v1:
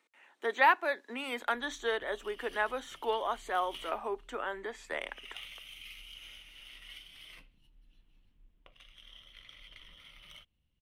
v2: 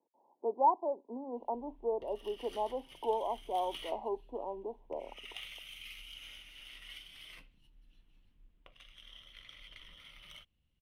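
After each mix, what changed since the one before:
speech: add steep low-pass 990 Hz 96 dB/oct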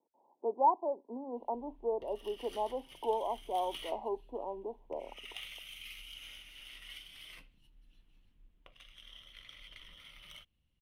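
master: add high shelf 7600 Hz +4 dB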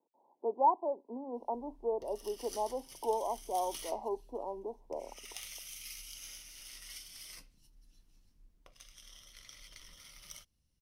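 background: add resonant high shelf 4100 Hz +10 dB, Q 3

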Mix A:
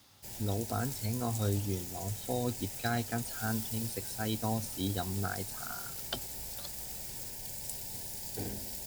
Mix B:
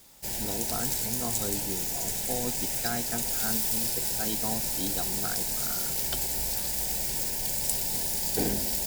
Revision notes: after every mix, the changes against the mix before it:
background +12.0 dB; master: add bell 100 Hz -12.5 dB 0.43 oct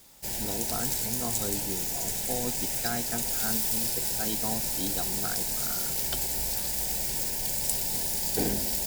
none

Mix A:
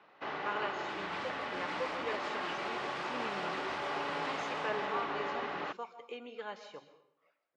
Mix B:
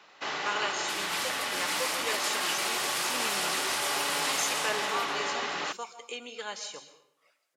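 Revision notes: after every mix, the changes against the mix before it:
master: remove tape spacing loss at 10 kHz 39 dB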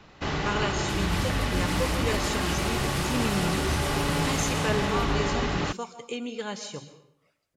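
second sound -4.5 dB; master: remove Bessel high-pass 740 Hz, order 2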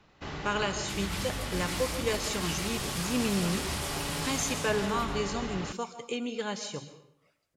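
first sound -9.5 dB

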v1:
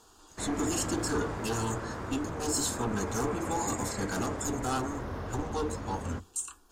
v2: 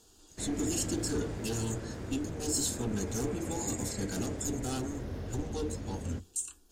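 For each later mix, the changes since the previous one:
master: add bell 1100 Hz -14.5 dB 1.3 oct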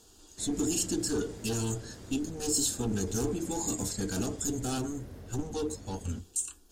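speech +3.0 dB; background -7.5 dB

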